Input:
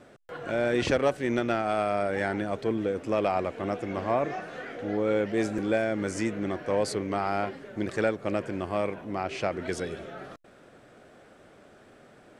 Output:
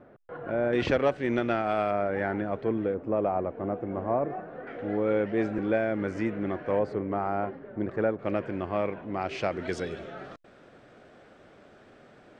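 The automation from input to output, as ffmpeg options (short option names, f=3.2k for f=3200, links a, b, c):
-af "asetnsamples=n=441:p=0,asendcmd='0.73 lowpass f 3500;1.91 lowpass f 1900;2.94 lowpass f 1000;4.67 lowpass f 2300;6.79 lowpass f 1300;8.19 lowpass f 2700;9.21 lowpass f 5600',lowpass=1.4k"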